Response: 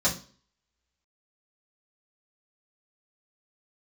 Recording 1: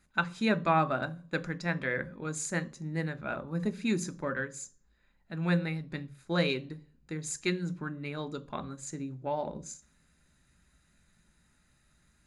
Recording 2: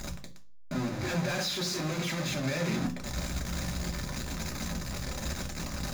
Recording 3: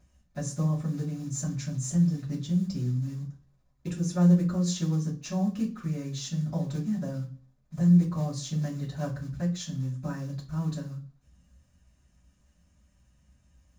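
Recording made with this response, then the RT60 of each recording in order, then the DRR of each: 3; 0.40, 0.40, 0.40 s; 9.5, 0.5, -8.0 dB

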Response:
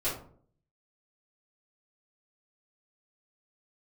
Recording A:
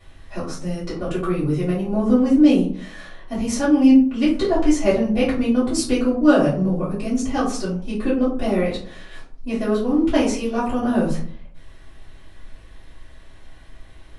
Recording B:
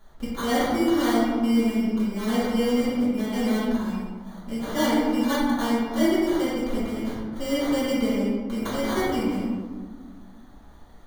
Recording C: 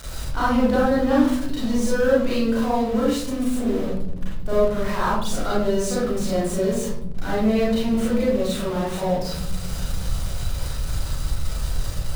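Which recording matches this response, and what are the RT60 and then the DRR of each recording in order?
A; 0.55, 1.7, 0.80 s; -12.5, -11.0, -8.0 dB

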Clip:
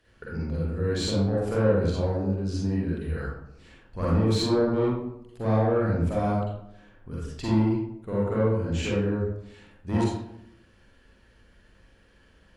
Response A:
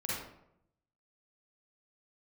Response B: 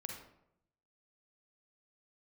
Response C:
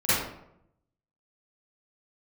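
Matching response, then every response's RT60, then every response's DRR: A; 0.75, 0.75, 0.75 s; -7.0, 1.5, -16.5 dB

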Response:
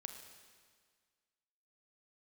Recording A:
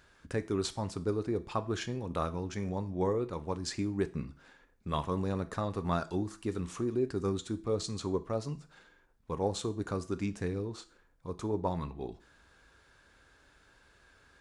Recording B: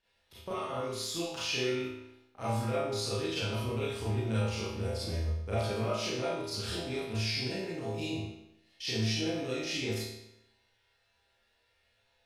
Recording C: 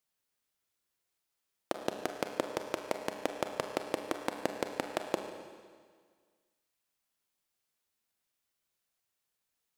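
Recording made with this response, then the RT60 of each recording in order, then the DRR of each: C; 0.40, 0.85, 1.8 s; 10.5, -11.0, 5.0 dB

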